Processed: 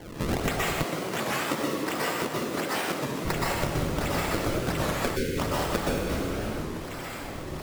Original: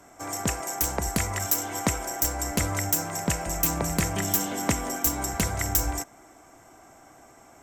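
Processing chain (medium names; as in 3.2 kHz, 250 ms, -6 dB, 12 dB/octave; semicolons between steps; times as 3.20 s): resonant high shelf 6 kHz +12.5 dB, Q 3; decimation with a swept rate 34×, swing 160% 1.4 Hz; plate-style reverb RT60 1.2 s, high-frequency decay 0.9×, pre-delay 110 ms, DRR -5.5 dB; compression 10:1, threshold -27 dBFS, peak gain reduction 24.5 dB; 0.83–3.25 s: high-pass 220 Hz 12 dB/octave; 5.16–5.38 s: time-frequency box 540–1400 Hz -23 dB; warped record 33 1/3 rpm, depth 250 cents; trim +2 dB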